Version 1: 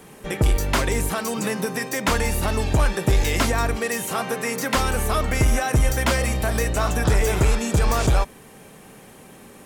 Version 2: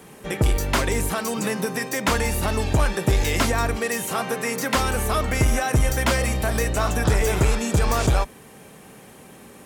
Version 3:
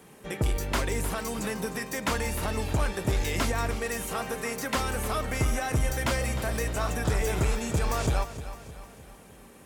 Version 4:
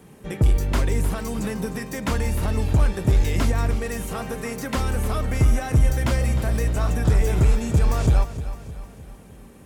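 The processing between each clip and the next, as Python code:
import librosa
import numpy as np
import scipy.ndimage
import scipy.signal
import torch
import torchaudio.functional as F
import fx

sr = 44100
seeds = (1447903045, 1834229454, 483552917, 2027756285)

y1 = scipy.signal.sosfilt(scipy.signal.butter(2, 40.0, 'highpass', fs=sr, output='sos'), x)
y2 = fx.echo_feedback(y1, sr, ms=307, feedback_pct=49, wet_db=-13)
y2 = y2 * librosa.db_to_amplitude(-7.0)
y3 = fx.low_shelf(y2, sr, hz=300.0, db=11.5)
y3 = y3 * librosa.db_to_amplitude(-1.0)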